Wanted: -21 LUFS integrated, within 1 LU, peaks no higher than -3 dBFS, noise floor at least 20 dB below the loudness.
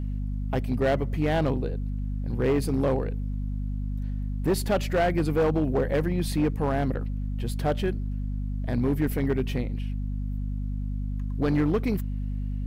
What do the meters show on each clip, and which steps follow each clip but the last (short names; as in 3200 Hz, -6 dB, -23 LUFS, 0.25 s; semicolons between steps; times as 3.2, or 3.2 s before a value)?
clipped 2.0%; flat tops at -18.0 dBFS; hum 50 Hz; harmonics up to 250 Hz; hum level -27 dBFS; loudness -27.5 LUFS; peak -18.0 dBFS; loudness target -21.0 LUFS
-> clip repair -18 dBFS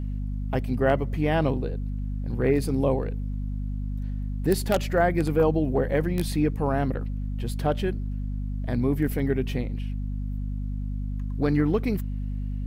clipped 0.0%; hum 50 Hz; harmonics up to 250 Hz; hum level -27 dBFS
-> notches 50/100/150/200/250 Hz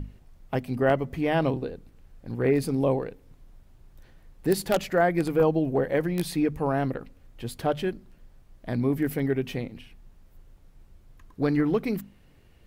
hum none; loudness -26.5 LUFS; peak -9.0 dBFS; loudness target -21.0 LUFS
-> gain +5.5 dB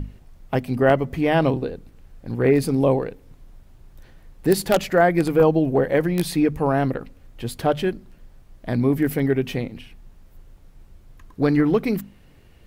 loudness -21.0 LUFS; peak -3.5 dBFS; noise floor -51 dBFS